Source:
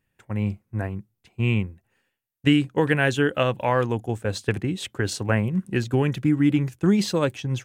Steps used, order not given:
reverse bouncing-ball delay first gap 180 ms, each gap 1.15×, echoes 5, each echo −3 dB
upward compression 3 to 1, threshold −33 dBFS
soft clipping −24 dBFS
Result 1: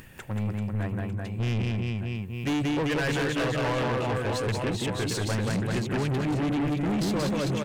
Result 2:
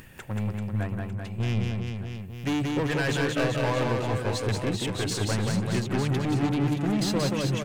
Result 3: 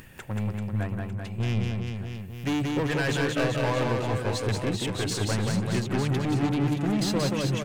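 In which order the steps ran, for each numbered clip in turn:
upward compression, then reverse bouncing-ball delay, then soft clipping
upward compression, then soft clipping, then reverse bouncing-ball delay
soft clipping, then upward compression, then reverse bouncing-ball delay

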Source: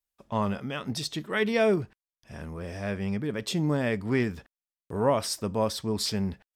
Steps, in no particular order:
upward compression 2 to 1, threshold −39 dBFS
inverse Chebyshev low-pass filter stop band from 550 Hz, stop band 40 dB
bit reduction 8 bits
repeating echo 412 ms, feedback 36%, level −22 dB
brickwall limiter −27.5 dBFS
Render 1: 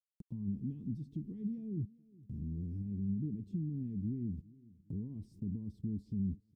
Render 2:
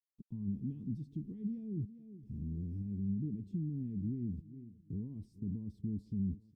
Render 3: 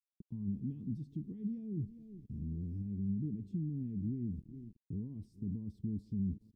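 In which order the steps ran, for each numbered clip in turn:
bit reduction, then brickwall limiter, then inverse Chebyshev low-pass filter, then upward compression, then repeating echo
upward compression, then bit reduction, then repeating echo, then brickwall limiter, then inverse Chebyshev low-pass filter
repeating echo, then bit reduction, then brickwall limiter, then upward compression, then inverse Chebyshev low-pass filter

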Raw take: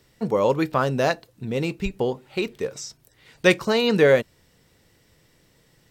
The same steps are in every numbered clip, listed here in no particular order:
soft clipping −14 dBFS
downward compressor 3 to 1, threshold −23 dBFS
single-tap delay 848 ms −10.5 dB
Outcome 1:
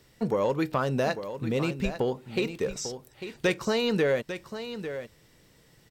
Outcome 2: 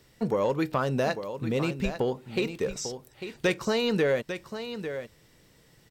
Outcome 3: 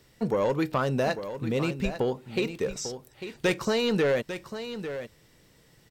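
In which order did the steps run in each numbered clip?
downward compressor, then soft clipping, then single-tap delay
downward compressor, then single-tap delay, then soft clipping
soft clipping, then downward compressor, then single-tap delay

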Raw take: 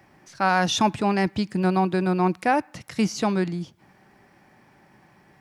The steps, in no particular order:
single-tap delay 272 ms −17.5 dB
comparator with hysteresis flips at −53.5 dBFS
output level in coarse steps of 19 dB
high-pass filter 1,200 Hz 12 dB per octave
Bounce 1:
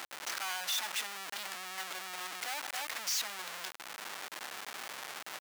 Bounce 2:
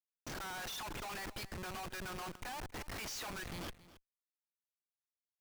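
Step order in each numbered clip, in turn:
single-tap delay, then output level in coarse steps, then comparator with hysteresis, then high-pass filter
high-pass filter, then output level in coarse steps, then comparator with hysteresis, then single-tap delay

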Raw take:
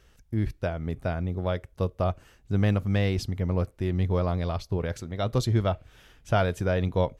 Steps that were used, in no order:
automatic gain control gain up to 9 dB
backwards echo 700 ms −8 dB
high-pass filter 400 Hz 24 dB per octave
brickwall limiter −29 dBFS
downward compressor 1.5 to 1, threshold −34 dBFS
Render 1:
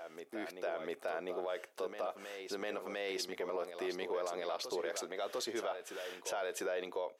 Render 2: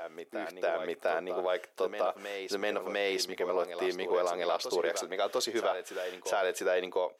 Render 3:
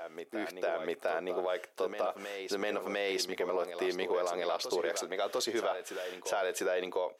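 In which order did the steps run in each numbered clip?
automatic gain control, then downward compressor, then high-pass filter, then brickwall limiter, then backwards echo
downward compressor, then high-pass filter, then brickwall limiter, then automatic gain control, then backwards echo
high-pass filter, then brickwall limiter, then automatic gain control, then downward compressor, then backwards echo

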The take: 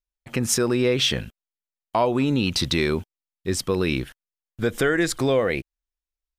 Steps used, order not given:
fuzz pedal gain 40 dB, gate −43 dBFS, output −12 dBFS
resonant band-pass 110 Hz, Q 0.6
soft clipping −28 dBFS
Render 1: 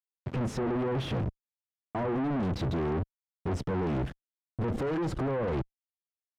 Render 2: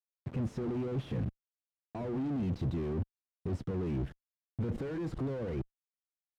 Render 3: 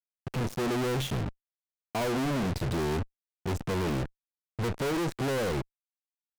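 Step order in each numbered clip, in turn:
fuzz pedal, then resonant band-pass, then soft clipping
fuzz pedal, then soft clipping, then resonant band-pass
resonant band-pass, then fuzz pedal, then soft clipping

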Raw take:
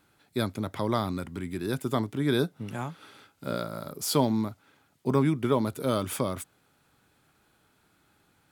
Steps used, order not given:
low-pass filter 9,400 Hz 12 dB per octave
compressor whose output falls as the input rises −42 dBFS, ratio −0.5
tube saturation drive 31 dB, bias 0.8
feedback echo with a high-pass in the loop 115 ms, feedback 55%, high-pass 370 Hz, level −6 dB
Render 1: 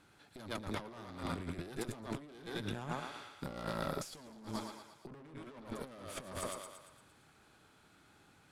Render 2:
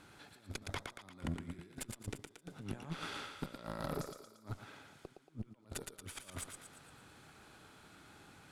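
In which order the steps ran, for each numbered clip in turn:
feedback echo with a high-pass in the loop, then tube saturation, then compressor whose output falls as the input rises, then low-pass filter
compressor whose output falls as the input rises, then feedback echo with a high-pass in the loop, then tube saturation, then low-pass filter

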